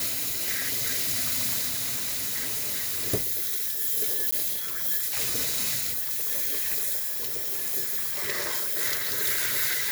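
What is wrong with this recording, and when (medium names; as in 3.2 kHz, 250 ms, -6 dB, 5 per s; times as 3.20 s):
1.67–3.07 s: clipped -25.5 dBFS
4.31–4.32 s: dropout 14 ms
6.97–7.75 s: clipped -25.5 dBFS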